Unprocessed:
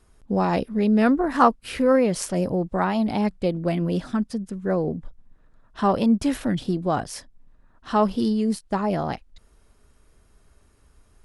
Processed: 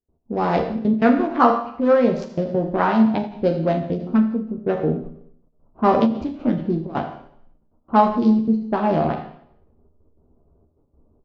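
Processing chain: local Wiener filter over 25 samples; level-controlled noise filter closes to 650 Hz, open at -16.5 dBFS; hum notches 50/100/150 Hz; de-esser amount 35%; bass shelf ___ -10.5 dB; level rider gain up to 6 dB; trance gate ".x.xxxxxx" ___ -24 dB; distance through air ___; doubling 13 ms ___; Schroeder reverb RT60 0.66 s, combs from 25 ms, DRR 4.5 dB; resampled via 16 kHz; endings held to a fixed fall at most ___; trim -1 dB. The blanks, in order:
73 Hz, 177 bpm, 83 m, -5 dB, 120 dB/s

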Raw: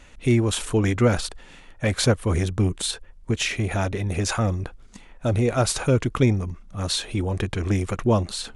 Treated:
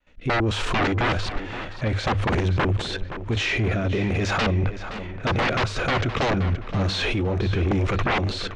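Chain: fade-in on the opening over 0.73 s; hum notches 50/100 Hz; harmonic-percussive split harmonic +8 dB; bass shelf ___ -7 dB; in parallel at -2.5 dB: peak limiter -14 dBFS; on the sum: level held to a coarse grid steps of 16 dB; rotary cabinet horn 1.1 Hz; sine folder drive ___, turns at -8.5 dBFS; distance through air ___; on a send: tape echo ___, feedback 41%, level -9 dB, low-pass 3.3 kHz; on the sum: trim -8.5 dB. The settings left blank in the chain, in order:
280 Hz, 18 dB, 180 m, 521 ms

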